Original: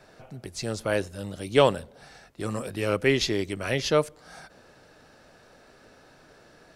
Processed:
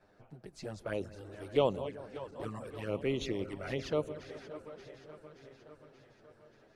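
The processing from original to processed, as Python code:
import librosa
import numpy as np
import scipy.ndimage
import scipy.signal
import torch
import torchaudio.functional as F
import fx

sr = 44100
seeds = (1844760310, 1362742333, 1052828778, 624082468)

y = fx.reverse_delay_fb(x, sr, ms=289, feedback_pct=77, wet_db=-13.0)
y = fx.high_shelf(y, sr, hz=2700.0, db=-11.5)
y = fx.env_flanger(y, sr, rest_ms=11.0, full_db=-22.0)
y = fx.echo_bbd(y, sr, ms=188, stages=2048, feedback_pct=73, wet_db=-18)
y = fx.hpss(y, sr, part='harmonic', gain_db=-5)
y = y * librosa.db_to_amplitude(-5.0)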